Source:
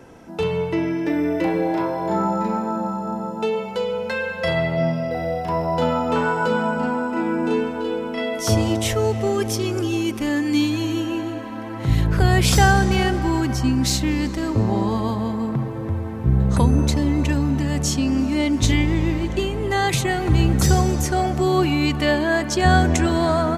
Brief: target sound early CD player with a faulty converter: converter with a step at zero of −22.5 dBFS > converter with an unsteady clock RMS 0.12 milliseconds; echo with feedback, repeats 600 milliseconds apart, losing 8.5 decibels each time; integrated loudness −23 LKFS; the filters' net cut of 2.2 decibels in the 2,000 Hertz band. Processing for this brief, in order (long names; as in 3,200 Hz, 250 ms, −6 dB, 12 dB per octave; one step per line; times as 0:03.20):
parametric band 2,000 Hz −3 dB
repeating echo 600 ms, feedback 38%, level −8.5 dB
converter with a step at zero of −22.5 dBFS
converter with an unsteady clock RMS 0.12 ms
level −5 dB